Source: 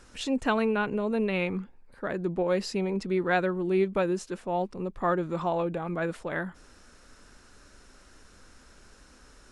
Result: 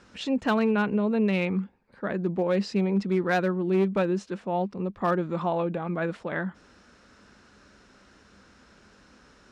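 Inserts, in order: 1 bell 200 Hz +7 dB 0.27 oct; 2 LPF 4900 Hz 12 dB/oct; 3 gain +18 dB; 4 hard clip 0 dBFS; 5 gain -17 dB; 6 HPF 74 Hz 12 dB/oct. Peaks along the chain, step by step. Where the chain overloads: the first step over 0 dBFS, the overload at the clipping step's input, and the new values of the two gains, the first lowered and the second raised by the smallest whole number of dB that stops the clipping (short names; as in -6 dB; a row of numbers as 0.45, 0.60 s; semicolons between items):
-12.5, -12.5, +5.5, 0.0, -17.0, -15.0 dBFS; step 3, 5.5 dB; step 3 +12 dB, step 5 -11 dB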